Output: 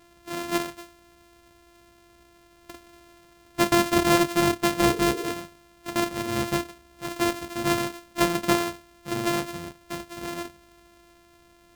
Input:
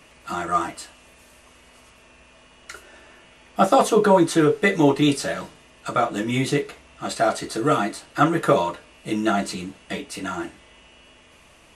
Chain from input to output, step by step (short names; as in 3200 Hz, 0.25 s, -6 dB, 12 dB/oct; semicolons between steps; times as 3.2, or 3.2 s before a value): sample sorter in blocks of 128 samples; 4.84–5.3 band noise 290–470 Hz -30 dBFS; gain -4.5 dB